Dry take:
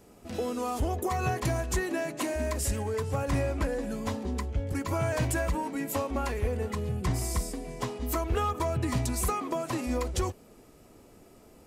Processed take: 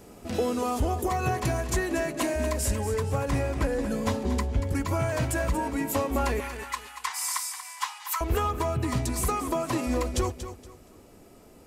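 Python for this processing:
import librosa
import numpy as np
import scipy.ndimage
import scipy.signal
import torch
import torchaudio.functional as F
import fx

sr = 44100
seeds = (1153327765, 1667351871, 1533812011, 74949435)

y = fx.steep_highpass(x, sr, hz=850.0, slope=72, at=(6.4, 8.21))
y = fx.rider(y, sr, range_db=4, speed_s=0.5)
y = fx.echo_feedback(y, sr, ms=235, feedback_pct=27, wet_db=-11)
y = y * 10.0 ** (3.0 / 20.0)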